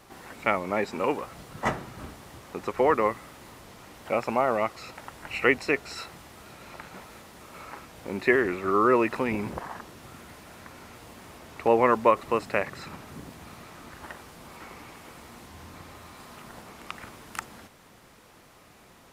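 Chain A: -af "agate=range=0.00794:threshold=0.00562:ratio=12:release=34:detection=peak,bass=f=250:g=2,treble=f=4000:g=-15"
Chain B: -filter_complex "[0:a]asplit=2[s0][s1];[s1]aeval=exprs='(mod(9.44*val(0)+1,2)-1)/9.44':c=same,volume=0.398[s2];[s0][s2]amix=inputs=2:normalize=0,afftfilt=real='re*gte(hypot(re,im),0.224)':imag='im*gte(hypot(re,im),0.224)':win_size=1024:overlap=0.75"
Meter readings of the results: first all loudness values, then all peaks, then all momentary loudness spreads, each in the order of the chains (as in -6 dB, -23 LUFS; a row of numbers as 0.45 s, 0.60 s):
-26.0 LUFS, -26.5 LUFS; -6.0 dBFS, -7.5 dBFS; 22 LU, 16 LU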